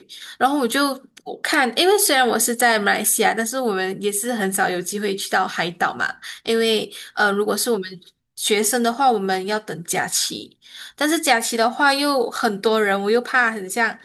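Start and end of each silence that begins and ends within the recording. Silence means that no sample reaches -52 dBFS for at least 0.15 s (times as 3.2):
8.1–8.37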